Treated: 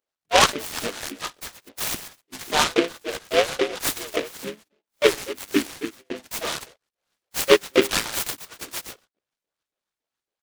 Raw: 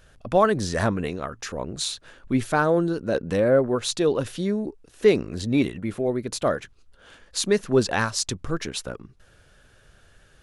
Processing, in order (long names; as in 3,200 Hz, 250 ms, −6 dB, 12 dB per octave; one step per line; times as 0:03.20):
delay that plays each chunk backwards 130 ms, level −12 dB
slap from a distant wall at 20 metres, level −10 dB
noise reduction from a noise print of the clip's start 19 dB
auto-filter high-pass saw up 3.6 Hz 310–3,800 Hz
pitch-shifted copies added −4 semitones −10 dB, +5 semitones −5 dB
noise gate −42 dBFS, range −13 dB
short delay modulated by noise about 2,100 Hz, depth 0.15 ms
level −1.5 dB